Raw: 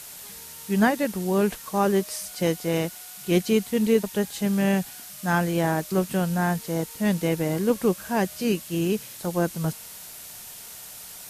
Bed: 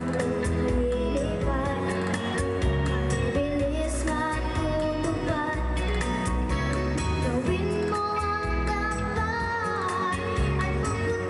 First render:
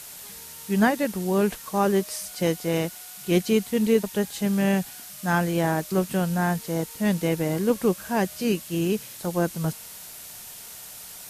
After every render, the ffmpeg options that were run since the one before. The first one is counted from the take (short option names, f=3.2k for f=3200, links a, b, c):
-af anull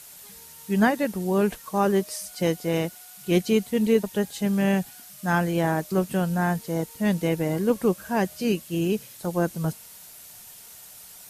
-af "afftdn=nr=6:nf=-42"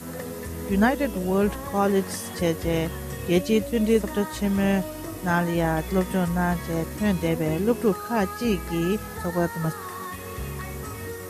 -filter_complex "[1:a]volume=-8dB[a];[0:a][a]amix=inputs=2:normalize=0"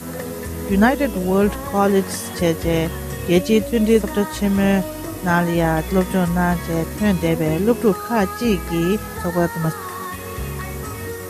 -af "volume=5.5dB"